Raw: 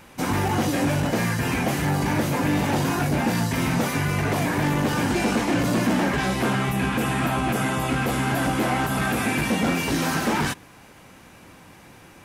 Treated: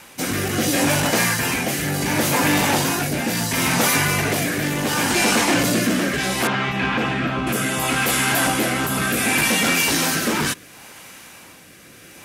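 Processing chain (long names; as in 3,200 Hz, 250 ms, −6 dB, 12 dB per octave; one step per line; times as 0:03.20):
spectral tilt +2.5 dB per octave
rotating-speaker cabinet horn 0.7 Hz
0:06.47–0:07.47: high-frequency loss of the air 210 metres
level +7 dB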